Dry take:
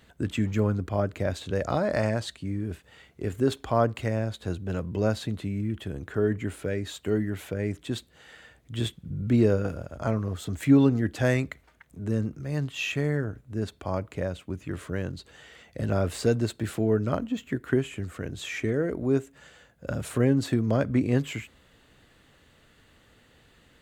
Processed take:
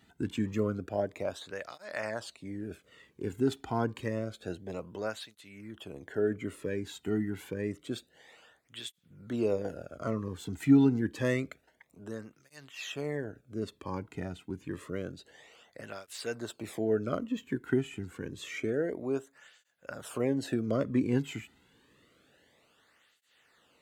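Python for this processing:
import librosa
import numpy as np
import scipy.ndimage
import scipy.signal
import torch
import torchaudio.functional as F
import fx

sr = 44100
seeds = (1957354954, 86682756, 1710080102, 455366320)

y = fx.flanger_cancel(x, sr, hz=0.28, depth_ms=1.9)
y = y * 10.0 ** (-2.5 / 20.0)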